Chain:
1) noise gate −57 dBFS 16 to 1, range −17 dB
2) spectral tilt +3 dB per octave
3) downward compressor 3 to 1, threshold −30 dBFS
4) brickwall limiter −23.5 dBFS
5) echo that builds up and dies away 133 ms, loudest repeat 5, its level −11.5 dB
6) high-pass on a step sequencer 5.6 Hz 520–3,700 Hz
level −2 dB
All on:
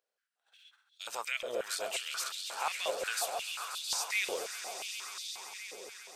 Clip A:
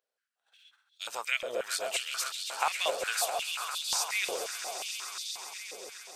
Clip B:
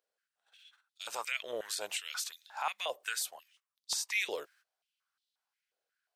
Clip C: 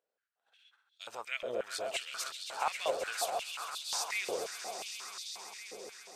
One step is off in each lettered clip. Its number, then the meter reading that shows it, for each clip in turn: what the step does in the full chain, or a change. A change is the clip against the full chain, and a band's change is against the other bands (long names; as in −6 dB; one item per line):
4, change in crest factor +3.0 dB
5, 500 Hz band −1.5 dB
2, 250 Hz band +4.5 dB